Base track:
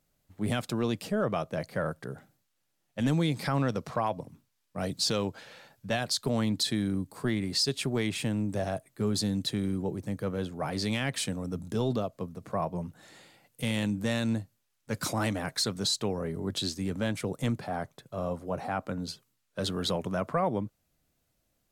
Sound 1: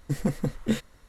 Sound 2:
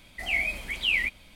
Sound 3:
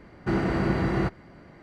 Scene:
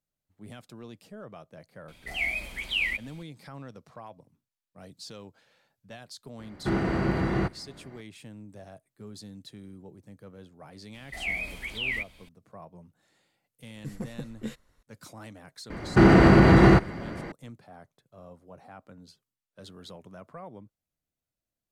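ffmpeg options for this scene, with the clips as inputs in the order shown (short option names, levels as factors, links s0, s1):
-filter_complex "[2:a]asplit=2[s0][s1];[3:a]asplit=2[s2][s3];[0:a]volume=0.168[s4];[s1]acrossover=split=2600[s5][s6];[s6]acompressor=threshold=0.0158:ratio=4:attack=1:release=60[s7];[s5][s7]amix=inputs=2:normalize=0[s8];[s3]alimiter=level_in=8.41:limit=0.891:release=50:level=0:latency=1[s9];[s0]atrim=end=1.35,asetpts=PTS-STARTPTS,volume=0.75,afade=t=in:d=0.004:c=hsin,afade=t=out:st=1.346:d=0.004:c=hsin,adelay=1880[s10];[s2]atrim=end=1.62,asetpts=PTS-STARTPTS,volume=0.841,afade=t=in:d=0.004:c=hsin,afade=t=out:st=1.616:d=0.004:c=hsin,adelay=6390[s11];[s8]atrim=end=1.35,asetpts=PTS-STARTPTS,volume=0.708,afade=t=in:d=0.004:c=hsin,afade=t=out:st=1.346:d=0.004:c=hsin,adelay=10940[s12];[1:a]atrim=end=1.08,asetpts=PTS-STARTPTS,volume=0.299,afade=t=in:d=0.004:c=hsin,afade=t=out:st=1.076:d=0.004:c=hsin,adelay=13750[s13];[s9]atrim=end=1.62,asetpts=PTS-STARTPTS,volume=0.501,afade=t=in:d=0.004:c=hsin,afade=t=out:st=1.616:d=0.004:c=hsin,adelay=15700[s14];[s4][s10][s11][s12][s13][s14]amix=inputs=6:normalize=0"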